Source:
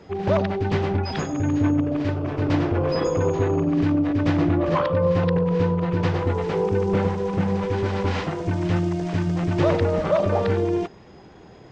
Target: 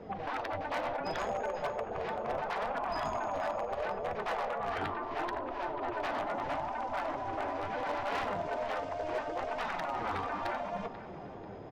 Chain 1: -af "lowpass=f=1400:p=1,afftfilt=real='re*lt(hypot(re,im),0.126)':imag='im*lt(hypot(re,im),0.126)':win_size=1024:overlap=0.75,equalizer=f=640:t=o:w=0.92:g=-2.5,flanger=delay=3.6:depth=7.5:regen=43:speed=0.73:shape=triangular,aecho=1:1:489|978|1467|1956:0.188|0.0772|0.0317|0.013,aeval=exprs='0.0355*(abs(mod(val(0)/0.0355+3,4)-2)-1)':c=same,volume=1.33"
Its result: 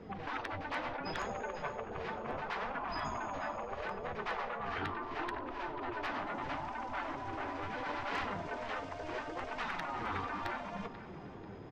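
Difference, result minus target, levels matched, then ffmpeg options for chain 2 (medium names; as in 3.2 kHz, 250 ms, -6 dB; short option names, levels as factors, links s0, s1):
500 Hz band -3.0 dB
-af "lowpass=f=1400:p=1,afftfilt=real='re*lt(hypot(re,im),0.126)':imag='im*lt(hypot(re,im),0.126)':win_size=1024:overlap=0.75,equalizer=f=640:t=o:w=0.92:g=6.5,flanger=delay=3.6:depth=7.5:regen=43:speed=0.73:shape=triangular,aecho=1:1:489|978|1467|1956:0.188|0.0772|0.0317|0.013,aeval=exprs='0.0355*(abs(mod(val(0)/0.0355+3,4)-2)-1)':c=same,volume=1.33"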